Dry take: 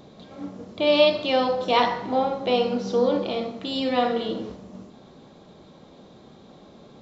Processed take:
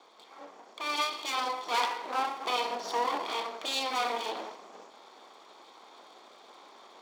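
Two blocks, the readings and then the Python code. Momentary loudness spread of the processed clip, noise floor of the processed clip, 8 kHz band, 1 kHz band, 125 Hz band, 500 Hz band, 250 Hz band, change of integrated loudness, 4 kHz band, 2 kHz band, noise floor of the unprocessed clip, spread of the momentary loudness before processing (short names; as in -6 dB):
20 LU, -56 dBFS, n/a, -4.5 dB, under -25 dB, -16.0 dB, -19.5 dB, -8.5 dB, -5.5 dB, -4.0 dB, -50 dBFS, 19 LU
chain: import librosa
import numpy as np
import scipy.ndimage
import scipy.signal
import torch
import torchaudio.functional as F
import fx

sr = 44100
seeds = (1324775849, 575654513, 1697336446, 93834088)

y = fx.lower_of_two(x, sr, delay_ms=0.88)
y = scipy.signal.sosfilt(scipy.signal.butter(4, 430.0, 'highpass', fs=sr, output='sos'), y)
y = fx.dynamic_eq(y, sr, hz=1400.0, q=1.2, threshold_db=-38.0, ratio=4.0, max_db=-5)
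y = fx.rider(y, sr, range_db=3, speed_s=0.5)
y = fx.end_taper(y, sr, db_per_s=110.0)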